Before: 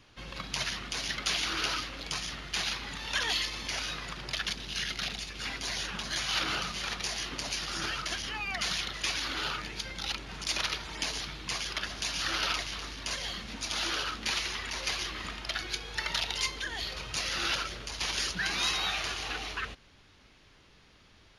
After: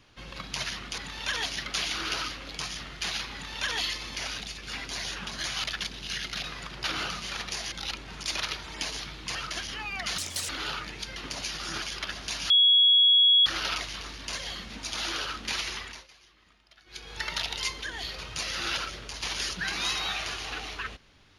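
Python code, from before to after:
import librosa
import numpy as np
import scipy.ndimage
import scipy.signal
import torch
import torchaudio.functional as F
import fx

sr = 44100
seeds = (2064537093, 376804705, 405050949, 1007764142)

y = fx.edit(x, sr, fx.duplicate(start_s=2.85, length_s=0.48, to_s=0.98),
    fx.swap(start_s=3.9, length_s=0.4, other_s=5.1, other_length_s=1.26),
    fx.swap(start_s=7.24, length_s=0.66, other_s=9.93, other_length_s=1.63),
    fx.speed_span(start_s=8.73, length_s=0.53, speed=1.71),
    fx.insert_tone(at_s=12.24, length_s=0.96, hz=3340.0, db=-16.0),
    fx.fade_down_up(start_s=14.54, length_s=1.4, db=-23.5, fade_s=0.31), tone=tone)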